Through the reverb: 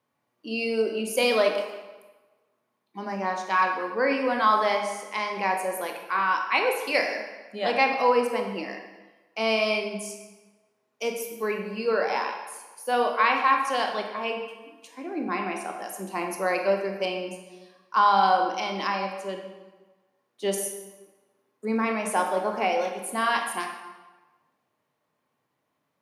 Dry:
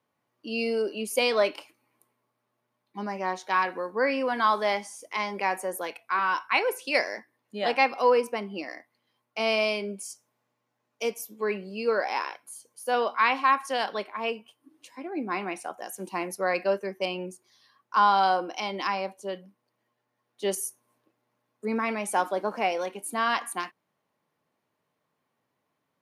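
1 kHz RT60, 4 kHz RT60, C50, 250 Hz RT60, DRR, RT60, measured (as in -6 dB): 1.3 s, 0.95 s, 5.0 dB, 1.1 s, 3.0 dB, 1.2 s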